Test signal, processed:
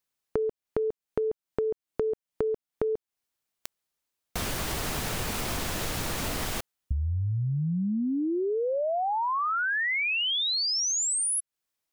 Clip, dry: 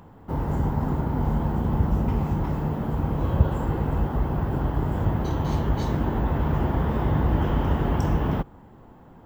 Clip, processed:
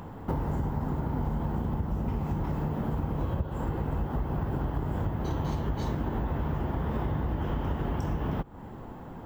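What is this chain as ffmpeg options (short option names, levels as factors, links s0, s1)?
-af "acompressor=threshold=0.0224:ratio=10,volume=2.11"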